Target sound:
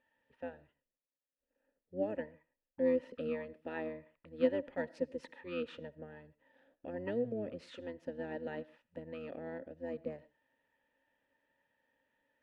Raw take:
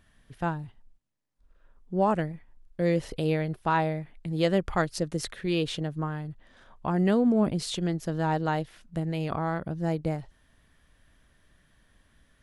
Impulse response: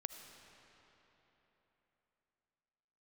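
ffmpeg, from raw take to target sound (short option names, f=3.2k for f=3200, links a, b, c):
-filter_complex "[0:a]asplit=3[a][b][c];[a]bandpass=f=530:t=q:w=8,volume=0dB[d];[b]bandpass=f=1.84k:t=q:w=8,volume=-6dB[e];[c]bandpass=f=2.48k:t=q:w=8,volume=-9dB[f];[d][e][f]amix=inputs=3:normalize=0,asplit=2[g][h];[1:a]atrim=start_sample=2205,atrim=end_sample=6615[i];[h][i]afir=irnorm=-1:irlink=0,volume=-2.5dB[j];[g][j]amix=inputs=2:normalize=0,asplit=2[k][l];[l]asetrate=22050,aresample=44100,atempo=2,volume=-5dB[m];[k][m]amix=inputs=2:normalize=0,volume=-5.5dB"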